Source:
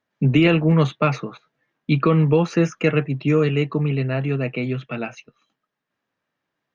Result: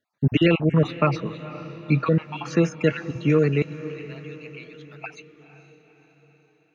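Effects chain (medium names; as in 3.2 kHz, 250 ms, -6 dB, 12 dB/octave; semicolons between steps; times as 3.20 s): random holes in the spectrogram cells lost 39%; 3.62–5.04 s: differentiator; echo that smears into a reverb 496 ms, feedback 52%, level -15 dB; trim -1 dB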